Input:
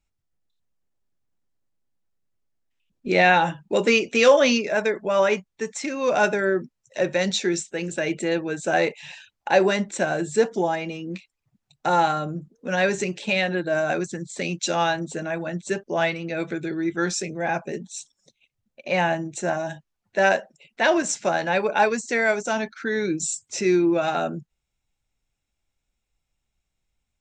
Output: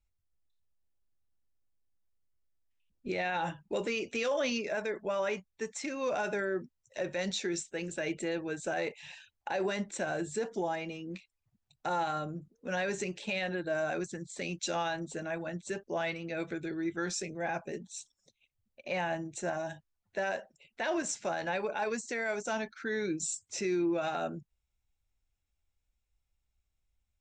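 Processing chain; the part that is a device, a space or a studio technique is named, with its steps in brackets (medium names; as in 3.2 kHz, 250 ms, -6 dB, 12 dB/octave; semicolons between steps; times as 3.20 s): car stereo with a boomy subwoofer (resonant low shelf 110 Hz +6.5 dB, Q 1.5; peak limiter -16 dBFS, peak gain reduction 11 dB); trim -8 dB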